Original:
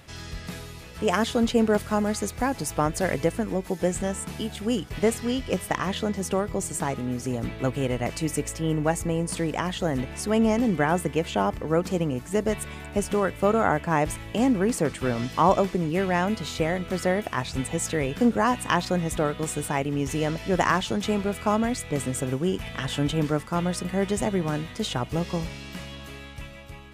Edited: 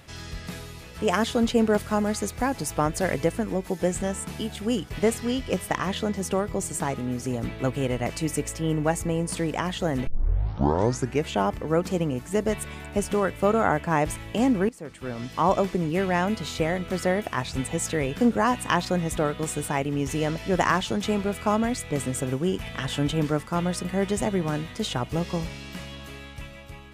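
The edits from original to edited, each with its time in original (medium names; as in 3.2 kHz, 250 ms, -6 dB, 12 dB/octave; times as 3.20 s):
10.07 s: tape start 1.21 s
14.69–15.72 s: fade in, from -22.5 dB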